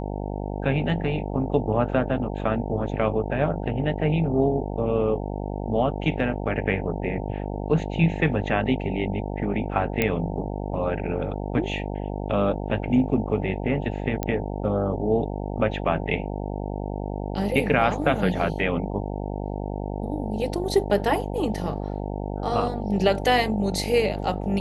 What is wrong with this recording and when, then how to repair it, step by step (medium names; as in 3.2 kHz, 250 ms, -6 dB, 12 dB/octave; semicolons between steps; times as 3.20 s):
buzz 50 Hz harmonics 18 -30 dBFS
10.02 s: pop -8 dBFS
14.23 s: pop -12 dBFS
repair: de-click; de-hum 50 Hz, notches 18